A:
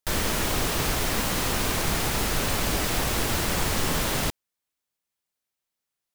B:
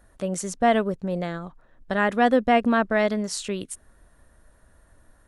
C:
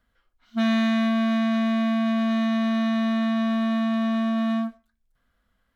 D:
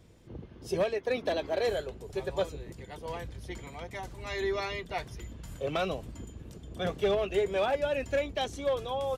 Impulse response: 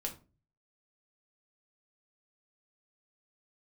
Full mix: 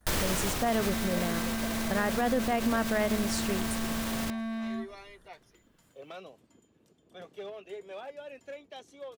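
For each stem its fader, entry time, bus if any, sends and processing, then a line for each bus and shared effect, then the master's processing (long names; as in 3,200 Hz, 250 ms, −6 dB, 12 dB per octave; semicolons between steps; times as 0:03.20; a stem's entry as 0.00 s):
+3.0 dB, 0.00 s, no send, brickwall limiter −21 dBFS, peak gain reduction 9 dB; automatic ducking −8 dB, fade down 1.10 s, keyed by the second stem
−4.5 dB, 0.00 s, no send, noise gate with hold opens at −48 dBFS
−2.0 dB, 0.15 s, no send, downward compressor 4 to 1, threshold −30 dBFS, peak gain reduction 10 dB; wave folding −27.5 dBFS
−14.0 dB, 0.35 s, no send, high-pass filter 220 Hz 12 dB per octave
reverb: not used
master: brickwall limiter −18 dBFS, peak gain reduction 7.5 dB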